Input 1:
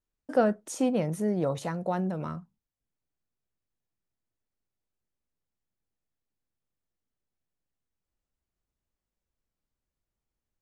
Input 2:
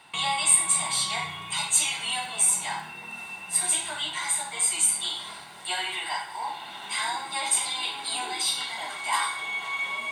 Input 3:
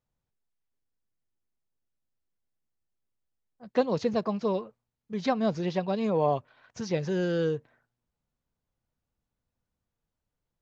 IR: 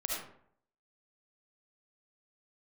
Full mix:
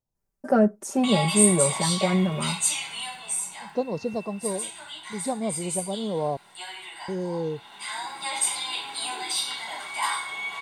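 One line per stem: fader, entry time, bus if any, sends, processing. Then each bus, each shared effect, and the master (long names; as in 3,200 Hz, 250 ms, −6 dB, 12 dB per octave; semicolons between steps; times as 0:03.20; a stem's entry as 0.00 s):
+3.0 dB, 0.15 s, no send, parametric band 3,400 Hz −12 dB 1.2 octaves; comb filter 5.1 ms, depth 85%
−1.0 dB, 0.90 s, no send, mains-hum notches 50/100/150 Hz; automatic ducking −8 dB, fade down 1.10 s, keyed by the third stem
−2.0 dB, 0.00 s, muted 0:06.37–0:07.08, no send, flat-topped bell 2,100 Hz −14 dB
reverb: not used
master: tape wow and flutter 16 cents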